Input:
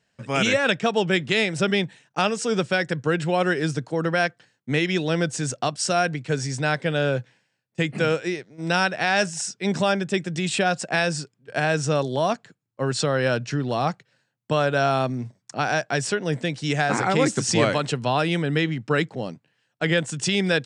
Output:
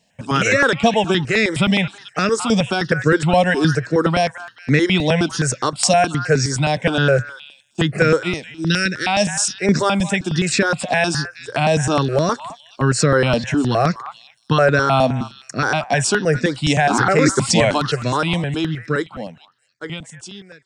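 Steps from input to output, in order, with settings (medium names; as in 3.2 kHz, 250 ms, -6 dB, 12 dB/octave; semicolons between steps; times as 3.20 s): fade out at the end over 3.80 s; 8.47–9.07 s: Butterworth band-stop 870 Hz, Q 0.55; repeats whose band climbs or falls 214 ms, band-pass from 1.3 kHz, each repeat 1.4 oct, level -11.5 dB; loudness maximiser +11 dB; stepped phaser 9.6 Hz 380–3100 Hz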